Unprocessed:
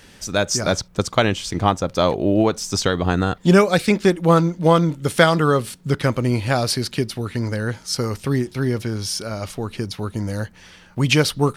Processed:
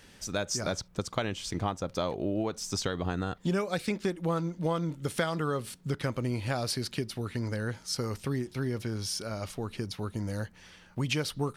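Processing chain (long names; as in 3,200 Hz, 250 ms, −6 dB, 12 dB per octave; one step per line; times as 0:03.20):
downward compressor 3 to 1, threshold −20 dBFS, peak gain reduction 9 dB
level −8 dB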